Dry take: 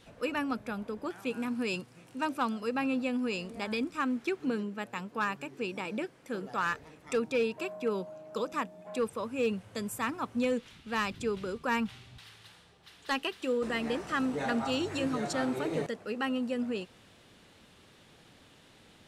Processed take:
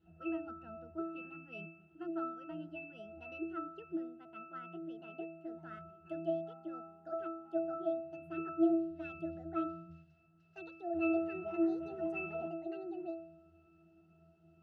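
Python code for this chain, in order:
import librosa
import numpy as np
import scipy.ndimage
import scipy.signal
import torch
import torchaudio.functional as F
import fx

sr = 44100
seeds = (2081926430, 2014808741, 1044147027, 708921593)

y = fx.speed_glide(x, sr, from_pct=107, to_pct=154)
y = fx.octave_resonator(y, sr, note='E', decay_s=0.66)
y = y * 10.0 ** (11.5 / 20.0)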